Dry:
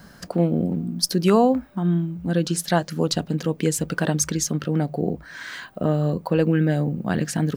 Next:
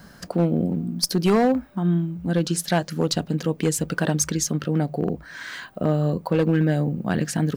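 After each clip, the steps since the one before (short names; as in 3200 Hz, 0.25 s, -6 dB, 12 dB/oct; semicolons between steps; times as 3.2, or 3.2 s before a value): hard clip -13 dBFS, distortion -18 dB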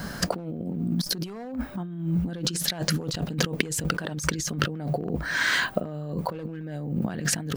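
negative-ratio compressor -33 dBFS, ratio -1; gain +3 dB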